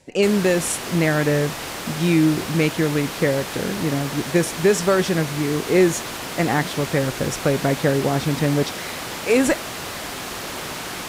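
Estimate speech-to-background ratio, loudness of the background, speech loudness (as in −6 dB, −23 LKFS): 8.5 dB, −29.5 LKFS, −21.0 LKFS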